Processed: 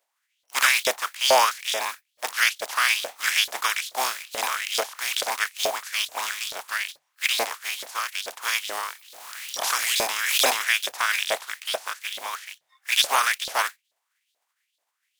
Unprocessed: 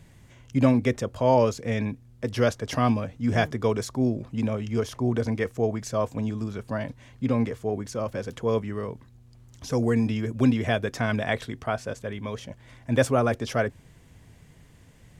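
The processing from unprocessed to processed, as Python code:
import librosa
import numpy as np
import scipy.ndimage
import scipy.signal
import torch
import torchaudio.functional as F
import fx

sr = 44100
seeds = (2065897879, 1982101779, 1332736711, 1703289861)

y = fx.spec_flatten(x, sr, power=0.32)
y = fx.noise_reduce_blind(y, sr, reduce_db=25)
y = fx.hum_notches(y, sr, base_hz=50, count=3)
y = fx.filter_lfo_highpass(y, sr, shape='saw_up', hz=2.3, low_hz=550.0, high_hz=4000.0, q=3.8)
y = fx.pre_swell(y, sr, db_per_s=39.0, at=(8.64, 10.44), fade=0.02)
y = F.gain(torch.from_numpy(y), -2.0).numpy()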